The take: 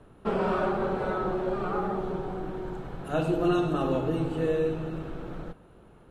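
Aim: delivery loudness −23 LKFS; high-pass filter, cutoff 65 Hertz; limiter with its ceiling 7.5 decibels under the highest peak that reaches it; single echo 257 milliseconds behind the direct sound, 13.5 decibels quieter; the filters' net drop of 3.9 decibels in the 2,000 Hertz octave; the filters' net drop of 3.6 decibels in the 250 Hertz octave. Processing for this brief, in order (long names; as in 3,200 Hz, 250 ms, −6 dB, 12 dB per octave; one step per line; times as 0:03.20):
high-pass filter 65 Hz
parametric band 250 Hz −6 dB
parametric band 2,000 Hz −6 dB
brickwall limiter −24.5 dBFS
single-tap delay 257 ms −13.5 dB
level +11 dB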